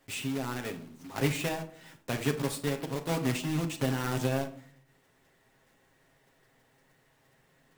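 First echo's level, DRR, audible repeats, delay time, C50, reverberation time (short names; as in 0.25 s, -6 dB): none, 3.5 dB, none, none, 12.5 dB, 0.55 s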